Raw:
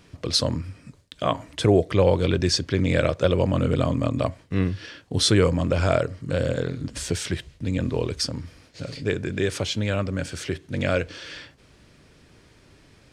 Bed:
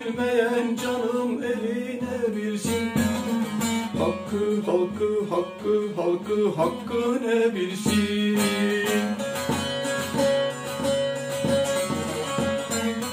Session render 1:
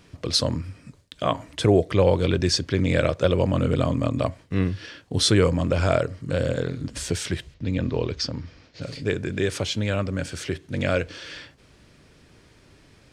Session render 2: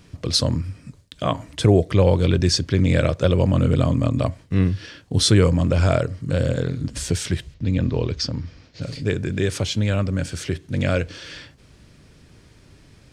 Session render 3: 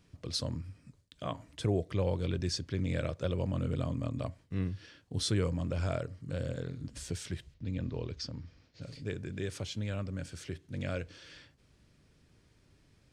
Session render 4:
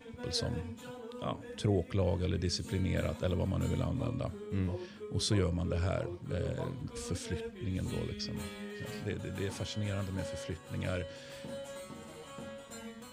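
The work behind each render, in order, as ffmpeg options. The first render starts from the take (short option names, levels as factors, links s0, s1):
-filter_complex "[0:a]asettb=1/sr,asplit=3[s0][s1][s2];[s0]atrim=end=7.544[s3];[s1]atrim=start=7.54:end=8.82,asetpts=PTS-STARTPTS,afade=t=in:d=0.004:c=qsin,afade=t=out:st=1.276:d=0.004:c=qsin,lowpass=f=5800:w=0.5412,lowpass=f=5800:w=1.3066[s4];[s2]atrim=start=8.816[s5];[s3][s4]acrossfade=d=0.004:c1=hsin:c2=qsin[s6];[s6][s5]acrossfade=d=0.004:c1=qsin:c2=hsin"
-af "bass=f=250:g=6,treble=f=4000:g=3"
-af "volume=0.178"
-filter_complex "[1:a]volume=0.0944[s0];[0:a][s0]amix=inputs=2:normalize=0"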